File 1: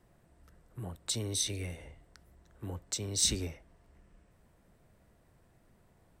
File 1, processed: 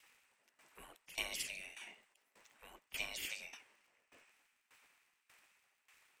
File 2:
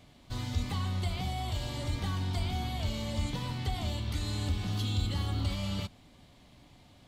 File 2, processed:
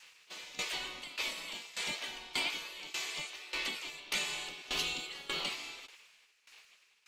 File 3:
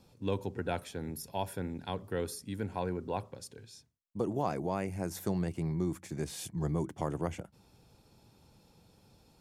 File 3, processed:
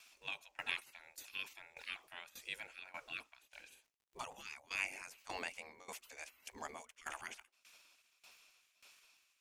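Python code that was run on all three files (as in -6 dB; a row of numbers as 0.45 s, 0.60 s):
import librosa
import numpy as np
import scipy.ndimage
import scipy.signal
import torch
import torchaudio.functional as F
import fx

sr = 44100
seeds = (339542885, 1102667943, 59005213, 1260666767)

y = fx.spec_gate(x, sr, threshold_db=-20, keep='weak')
y = fx.graphic_eq_15(y, sr, hz=(100, 2500, 6300), db=(-4, 12, 5))
y = fx.dmg_crackle(y, sr, seeds[0], per_s=72.0, level_db=-60.0)
y = fx.tremolo_decay(y, sr, direction='decaying', hz=1.7, depth_db=18)
y = F.gain(torch.from_numpy(y), 6.5).numpy()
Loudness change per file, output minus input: -9.5 LU, -3.0 LU, -9.5 LU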